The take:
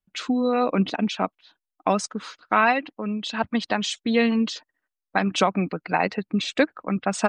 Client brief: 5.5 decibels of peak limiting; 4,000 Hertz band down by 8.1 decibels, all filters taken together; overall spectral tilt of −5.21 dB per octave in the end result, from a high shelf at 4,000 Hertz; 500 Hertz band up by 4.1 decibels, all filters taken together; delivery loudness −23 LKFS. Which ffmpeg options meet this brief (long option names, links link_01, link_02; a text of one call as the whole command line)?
ffmpeg -i in.wav -af "equalizer=frequency=500:width_type=o:gain=5,highshelf=frequency=4000:gain=-8,equalizer=frequency=4000:width_type=o:gain=-6,volume=1.5dB,alimiter=limit=-9dB:level=0:latency=1" out.wav